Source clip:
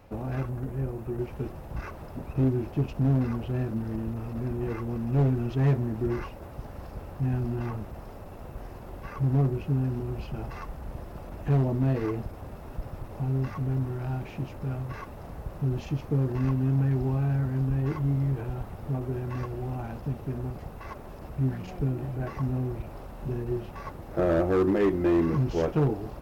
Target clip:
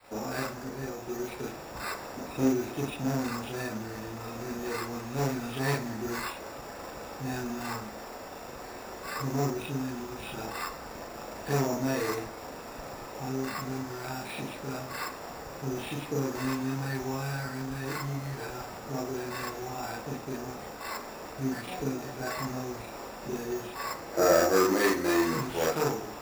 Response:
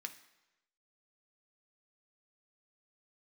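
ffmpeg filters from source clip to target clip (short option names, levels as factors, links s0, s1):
-filter_complex "[0:a]adynamicequalizer=threshold=0.0112:dfrequency=340:dqfactor=0.9:tfrequency=340:tqfactor=0.9:attack=5:release=100:ratio=0.375:range=3.5:mode=cutabove:tftype=bell,crystalizer=i=4:c=0,acrossover=split=250 2900:gain=0.178 1 0.141[s0][s1][s2];[s0][s1][s2]amix=inputs=3:normalize=0,acrusher=samples=7:mix=1:aa=0.000001,asplit=2[s3][s4];[1:a]atrim=start_sample=2205,adelay=38[s5];[s4][s5]afir=irnorm=-1:irlink=0,volume=2.37[s6];[s3][s6]amix=inputs=2:normalize=0"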